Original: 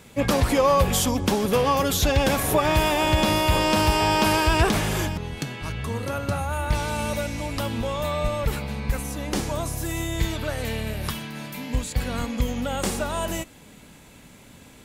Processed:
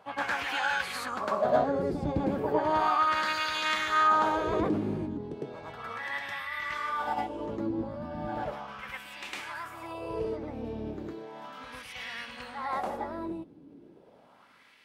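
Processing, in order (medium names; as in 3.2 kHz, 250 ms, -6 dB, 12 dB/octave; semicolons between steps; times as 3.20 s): wah-wah 0.35 Hz 200–1800 Hz, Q 2.3; formant shift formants +5 st; reverse echo 106 ms -4.5 dB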